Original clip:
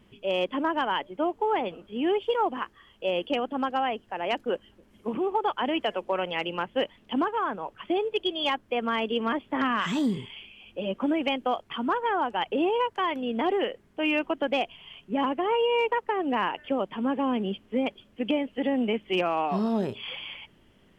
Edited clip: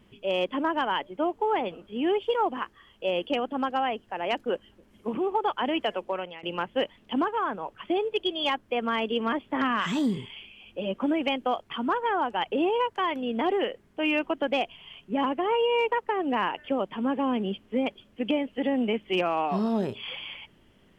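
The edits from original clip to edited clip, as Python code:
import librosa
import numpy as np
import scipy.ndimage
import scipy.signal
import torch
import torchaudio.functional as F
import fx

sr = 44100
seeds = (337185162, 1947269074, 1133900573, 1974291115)

y = fx.edit(x, sr, fx.fade_out_to(start_s=5.82, length_s=0.61, curve='qsin', floor_db=-22.5), tone=tone)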